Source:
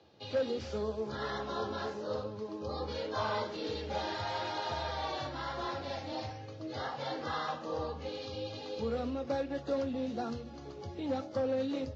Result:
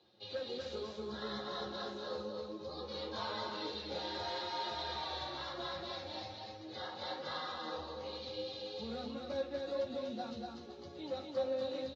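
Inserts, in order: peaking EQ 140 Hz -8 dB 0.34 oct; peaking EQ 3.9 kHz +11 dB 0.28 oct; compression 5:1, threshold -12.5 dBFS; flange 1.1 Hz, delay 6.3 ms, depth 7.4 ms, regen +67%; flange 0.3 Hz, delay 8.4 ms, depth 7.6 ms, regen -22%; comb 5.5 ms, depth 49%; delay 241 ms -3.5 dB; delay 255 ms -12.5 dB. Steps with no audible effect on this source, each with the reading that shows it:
compression, threshold -12.5 dBFS: peak at its input -21.5 dBFS

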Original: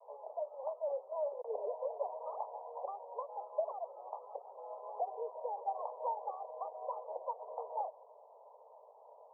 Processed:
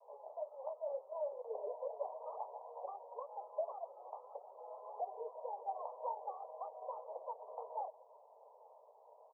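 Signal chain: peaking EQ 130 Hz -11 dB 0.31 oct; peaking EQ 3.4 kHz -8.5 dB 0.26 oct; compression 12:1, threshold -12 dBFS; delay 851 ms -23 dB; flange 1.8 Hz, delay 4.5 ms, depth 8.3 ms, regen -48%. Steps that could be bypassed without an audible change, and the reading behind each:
peaking EQ 130 Hz: input has nothing below 380 Hz; peaking EQ 3.4 kHz: input has nothing above 1.2 kHz; compression, threshold -12 dBFS: peak at its input -23.0 dBFS

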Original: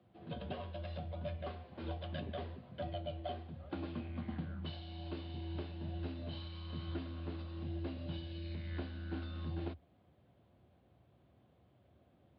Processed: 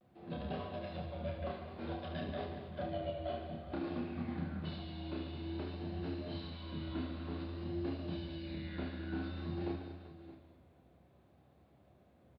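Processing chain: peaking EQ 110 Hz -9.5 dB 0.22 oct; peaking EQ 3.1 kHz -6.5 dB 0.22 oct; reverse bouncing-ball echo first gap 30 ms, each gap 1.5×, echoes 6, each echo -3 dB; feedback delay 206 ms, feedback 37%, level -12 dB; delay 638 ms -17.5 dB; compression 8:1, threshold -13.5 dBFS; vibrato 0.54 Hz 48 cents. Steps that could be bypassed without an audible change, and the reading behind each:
compression, threshold -13.5 dBFS: peak at its input -26.0 dBFS

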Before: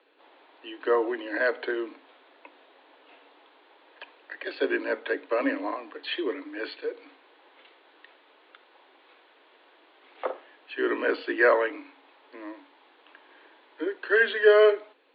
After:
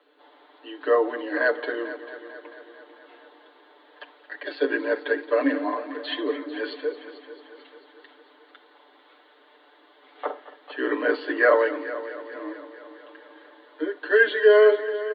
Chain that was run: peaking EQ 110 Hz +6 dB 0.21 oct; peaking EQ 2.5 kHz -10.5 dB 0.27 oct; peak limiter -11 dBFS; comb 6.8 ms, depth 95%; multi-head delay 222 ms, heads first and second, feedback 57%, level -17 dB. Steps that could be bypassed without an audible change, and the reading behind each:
peaking EQ 110 Hz: input has nothing below 230 Hz

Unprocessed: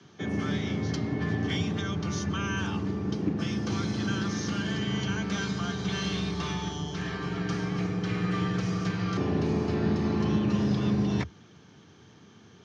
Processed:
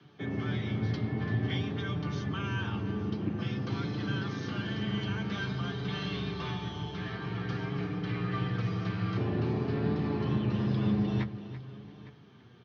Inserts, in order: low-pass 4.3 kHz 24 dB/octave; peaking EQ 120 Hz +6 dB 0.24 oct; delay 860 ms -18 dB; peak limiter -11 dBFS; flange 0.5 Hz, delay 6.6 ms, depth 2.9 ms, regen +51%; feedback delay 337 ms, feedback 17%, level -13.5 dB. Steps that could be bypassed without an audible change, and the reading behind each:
peak limiter -11 dBFS: peak at its input -13.5 dBFS

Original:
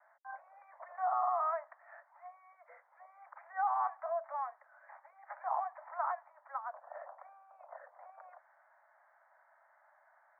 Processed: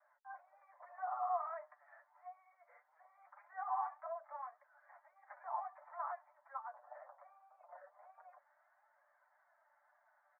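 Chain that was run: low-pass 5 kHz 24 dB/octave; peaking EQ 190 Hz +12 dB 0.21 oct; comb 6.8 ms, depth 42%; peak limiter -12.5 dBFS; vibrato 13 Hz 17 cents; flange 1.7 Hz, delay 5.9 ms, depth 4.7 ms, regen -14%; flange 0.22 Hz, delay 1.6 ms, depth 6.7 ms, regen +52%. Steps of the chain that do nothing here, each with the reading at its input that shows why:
low-pass 5 kHz: input has nothing above 1.9 kHz; peaking EQ 190 Hz: input has nothing below 510 Hz; peak limiter -12.5 dBFS: peak at its input -21.0 dBFS

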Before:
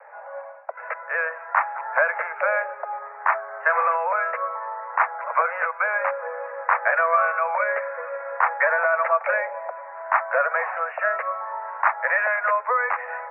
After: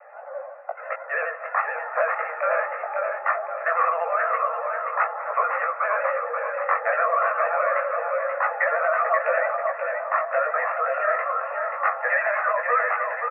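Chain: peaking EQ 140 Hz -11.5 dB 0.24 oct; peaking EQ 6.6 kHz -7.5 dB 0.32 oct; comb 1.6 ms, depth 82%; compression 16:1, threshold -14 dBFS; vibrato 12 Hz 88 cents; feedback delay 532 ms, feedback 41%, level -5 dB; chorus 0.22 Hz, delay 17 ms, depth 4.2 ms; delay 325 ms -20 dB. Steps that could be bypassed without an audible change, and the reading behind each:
peaking EQ 140 Hz: input has nothing below 400 Hz; peaking EQ 6.6 kHz: input has nothing above 2.6 kHz

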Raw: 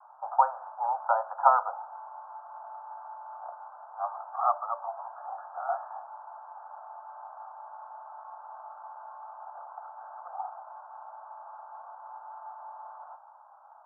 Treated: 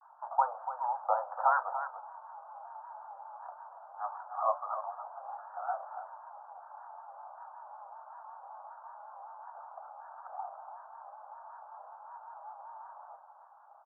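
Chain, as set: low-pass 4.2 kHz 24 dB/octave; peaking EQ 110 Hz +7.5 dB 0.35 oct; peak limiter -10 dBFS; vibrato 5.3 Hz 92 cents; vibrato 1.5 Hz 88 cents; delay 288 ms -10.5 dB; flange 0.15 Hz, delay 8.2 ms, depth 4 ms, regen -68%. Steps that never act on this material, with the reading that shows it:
low-pass 4.2 kHz: input has nothing above 1.6 kHz; peaking EQ 110 Hz: input has nothing below 510 Hz

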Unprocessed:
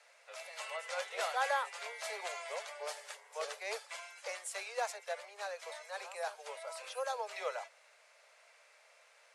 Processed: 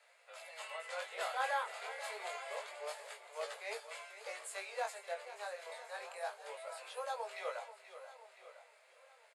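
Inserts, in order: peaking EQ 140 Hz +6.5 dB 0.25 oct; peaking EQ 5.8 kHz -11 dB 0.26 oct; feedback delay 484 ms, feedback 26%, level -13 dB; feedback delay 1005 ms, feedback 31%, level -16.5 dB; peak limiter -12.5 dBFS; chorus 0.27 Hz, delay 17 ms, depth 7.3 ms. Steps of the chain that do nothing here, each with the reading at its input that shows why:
peaking EQ 140 Hz: input has nothing below 360 Hz; peak limiter -12.5 dBFS: peak at its input -21.5 dBFS

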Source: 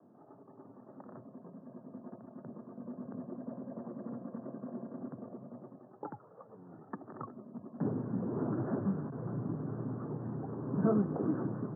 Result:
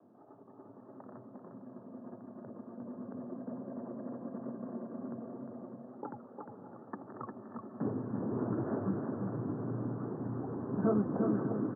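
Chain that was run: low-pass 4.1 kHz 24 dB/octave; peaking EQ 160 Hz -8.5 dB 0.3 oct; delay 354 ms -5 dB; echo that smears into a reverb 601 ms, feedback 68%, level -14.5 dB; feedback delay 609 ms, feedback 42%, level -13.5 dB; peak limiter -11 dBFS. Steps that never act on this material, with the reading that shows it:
low-pass 4.1 kHz: input has nothing above 1.4 kHz; peak limiter -11 dBFS: peak at its input -19.0 dBFS

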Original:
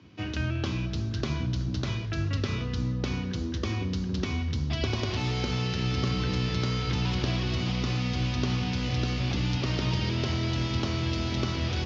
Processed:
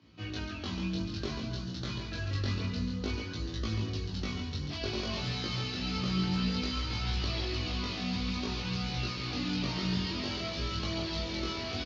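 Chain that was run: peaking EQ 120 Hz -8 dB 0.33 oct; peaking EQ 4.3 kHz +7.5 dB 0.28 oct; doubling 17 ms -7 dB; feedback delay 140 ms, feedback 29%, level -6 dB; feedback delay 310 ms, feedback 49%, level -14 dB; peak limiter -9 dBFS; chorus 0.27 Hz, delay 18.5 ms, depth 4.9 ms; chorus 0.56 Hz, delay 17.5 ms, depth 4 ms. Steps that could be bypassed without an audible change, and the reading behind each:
peak limiter -9 dBFS: peak at its input -12.5 dBFS

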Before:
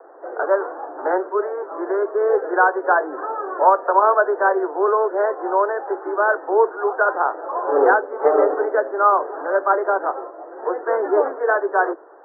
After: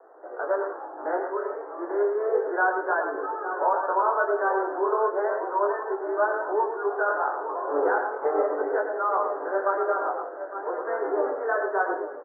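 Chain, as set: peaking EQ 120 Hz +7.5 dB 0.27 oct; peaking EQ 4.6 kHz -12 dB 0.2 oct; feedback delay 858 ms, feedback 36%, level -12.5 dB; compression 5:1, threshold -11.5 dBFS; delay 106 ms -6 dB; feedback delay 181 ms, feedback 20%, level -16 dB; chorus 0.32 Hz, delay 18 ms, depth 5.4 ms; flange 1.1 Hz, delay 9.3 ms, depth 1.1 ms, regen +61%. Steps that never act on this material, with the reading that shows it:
peaking EQ 120 Hz: input has nothing below 270 Hz; peaking EQ 4.6 kHz: input has nothing above 1.8 kHz

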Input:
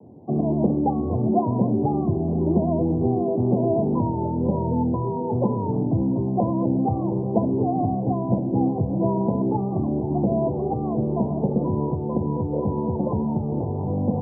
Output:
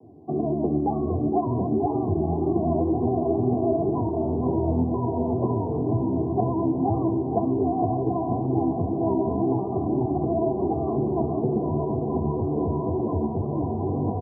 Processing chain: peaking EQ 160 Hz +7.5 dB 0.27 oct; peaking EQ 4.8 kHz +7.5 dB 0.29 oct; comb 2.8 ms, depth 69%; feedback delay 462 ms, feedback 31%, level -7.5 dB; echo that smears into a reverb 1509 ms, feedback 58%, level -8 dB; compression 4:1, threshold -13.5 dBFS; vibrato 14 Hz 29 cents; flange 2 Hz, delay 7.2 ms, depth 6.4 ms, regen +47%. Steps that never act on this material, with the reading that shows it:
peaking EQ 4.8 kHz: input has nothing above 1 kHz

